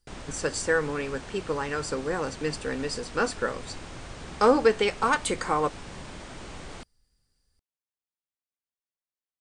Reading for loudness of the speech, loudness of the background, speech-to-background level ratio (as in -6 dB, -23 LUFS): -27.0 LUFS, -42.0 LUFS, 15.0 dB